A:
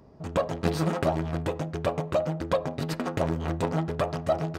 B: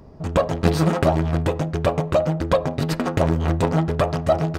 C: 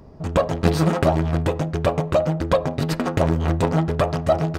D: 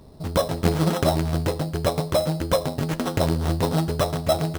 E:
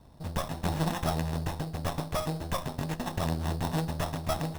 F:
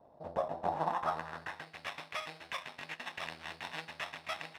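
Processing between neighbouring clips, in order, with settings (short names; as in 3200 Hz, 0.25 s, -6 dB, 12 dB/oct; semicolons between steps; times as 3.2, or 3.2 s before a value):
low shelf 66 Hz +11 dB; gain +6.5 dB
nothing audible
sample-rate reducer 4600 Hz, jitter 0%; gain -2.5 dB
minimum comb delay 1.1 ms; gain -6.5 dB
band-pass sweep 630 Hz -> 2300 Hz, 0.54–1.77; gain +5 dB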